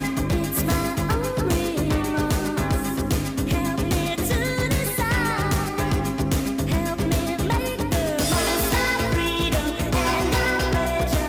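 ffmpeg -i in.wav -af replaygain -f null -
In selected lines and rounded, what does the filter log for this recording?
track_gain = +6.0 dB
track_peak = 0.104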